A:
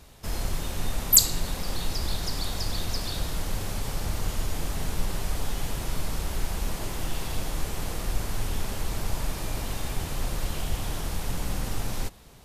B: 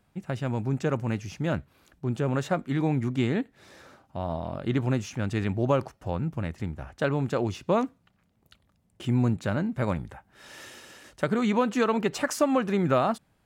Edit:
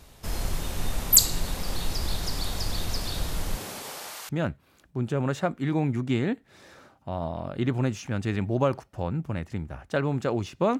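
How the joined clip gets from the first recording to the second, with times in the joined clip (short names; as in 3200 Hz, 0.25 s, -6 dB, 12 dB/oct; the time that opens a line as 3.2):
A
3.55–4.29 HPF 150 Hz -> 1200 Hz
4.29 switch to B from 1.37 s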